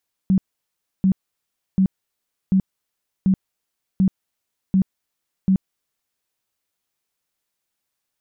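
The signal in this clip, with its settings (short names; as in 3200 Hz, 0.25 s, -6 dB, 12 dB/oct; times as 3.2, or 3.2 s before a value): tone bursts 190 Hz, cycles 15, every 0.74 s, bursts 8, -12.5 dBFS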